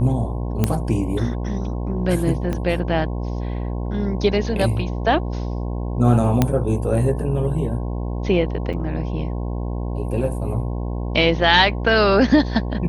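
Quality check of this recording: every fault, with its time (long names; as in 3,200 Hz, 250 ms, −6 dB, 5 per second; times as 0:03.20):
mains buzz 60 Hz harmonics 18 −25 dBFS
0:00.64: click −5 dBFS
0:02.53: click −13 dBFS
0:06.42: click −3 dBFS
0:08.73–0:08.74: drop-out 6.4 ms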